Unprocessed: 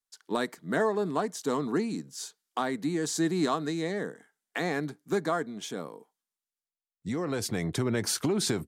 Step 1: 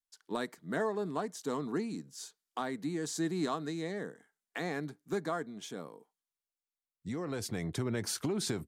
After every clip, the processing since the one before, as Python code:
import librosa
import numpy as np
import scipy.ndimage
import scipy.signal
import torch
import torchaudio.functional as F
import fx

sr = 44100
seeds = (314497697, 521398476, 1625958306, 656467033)

y = fx.low_shelf(x, sr, hz=84.0, db=6.0)
y = y * librosa.db_to_amplitude(-6.5)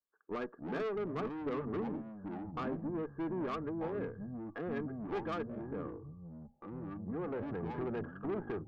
y = scipy.signal.sosfilt(scipy.signal.cheby1(6, 9, 1700.0, 'lowpass', fs=sr, output='sos'), x)
y = fx.tube_stage(y, sr, drive_db=39.0, bias=0.35)
y = fx.echo_pitch(y, sr, ms=175, semitones=-6, count=3, db_per_echo=-6.0)
y = y * librosa.db_to_amplitude(5.5)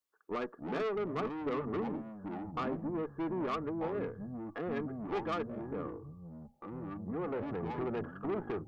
y = fx.low_shelf(x, sr, hz=470.0, db=-4.5)
y = fx.notch(y, sr, hz=1600.0, q=13.0)
y = y * librosa.db_to_amplitude(4.5)